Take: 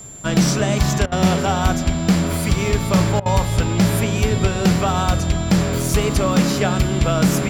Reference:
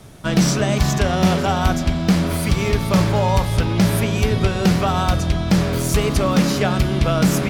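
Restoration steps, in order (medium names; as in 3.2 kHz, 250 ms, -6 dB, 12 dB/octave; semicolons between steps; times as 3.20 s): band-stop 7.3 kHz, Q 30; interpolate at 1.06/3.20 s, 57 ms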